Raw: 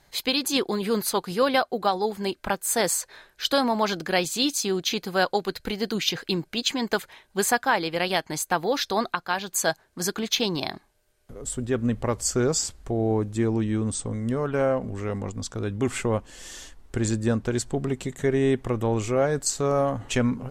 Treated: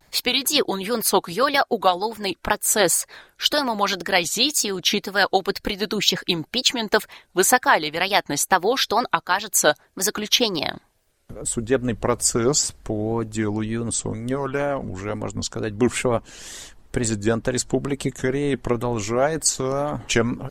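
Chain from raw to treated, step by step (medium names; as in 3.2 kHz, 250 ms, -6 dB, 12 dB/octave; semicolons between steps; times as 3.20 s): harmonic-percussive split harmonic -9 dB; wow and flutter 120 cents; trim +7 dB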